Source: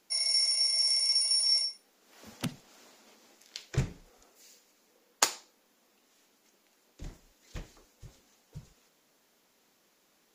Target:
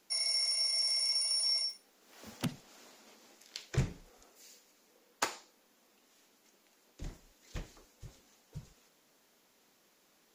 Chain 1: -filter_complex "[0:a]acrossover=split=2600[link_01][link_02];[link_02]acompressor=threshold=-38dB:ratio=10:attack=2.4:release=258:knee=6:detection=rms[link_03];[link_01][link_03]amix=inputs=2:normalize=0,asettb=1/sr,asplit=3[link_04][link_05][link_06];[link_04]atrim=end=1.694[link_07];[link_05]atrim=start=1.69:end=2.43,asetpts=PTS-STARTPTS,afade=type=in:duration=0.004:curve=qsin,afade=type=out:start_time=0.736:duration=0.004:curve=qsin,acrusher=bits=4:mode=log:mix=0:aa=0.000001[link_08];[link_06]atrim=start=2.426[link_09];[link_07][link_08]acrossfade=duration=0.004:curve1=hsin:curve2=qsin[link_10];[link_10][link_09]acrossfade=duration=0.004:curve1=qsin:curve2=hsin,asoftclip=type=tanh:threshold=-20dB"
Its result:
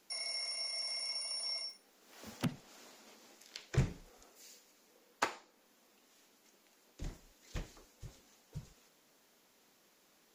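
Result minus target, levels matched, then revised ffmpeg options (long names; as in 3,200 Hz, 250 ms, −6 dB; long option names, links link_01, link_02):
downward compressor: peak gain reduction +10 dB
-filter_complex "[0:a]acrossover=split=2600[link_01][link_02];[link_02]acompressor=threshold=-27dB:ratio=10:attack=2.4:release=258:knee=6:detection=rms[link_03];[link_01][link_03]amix=inputs=2:normalize=0,asettb=1/sr,asplit=3[link_04][link_05][link_06];[link_04]atrim=end=1.694[link_07];[link_05]atrim=start=1.69:end=2.43,asetpts=PTS-STARTPTS,afade=type=in:duration=0.004:curve=qsin,afade=type=out:start_time=0.736:duration=0.004:curve=qsin,acrusher=bits=4:mode=log:mix=0:aa=0.000001[link_08];[link_06]atrim=start=2.426[link_09];[link_07][link_08]acrossfade=duration=0.004:curve1=hsin:curve2=qsin[link_10];[link_10][link_09]acrossfade=duration=0.004:curve1=qsin:curve2=hsin,asoftclip=type=tanh:threshold=-20dB"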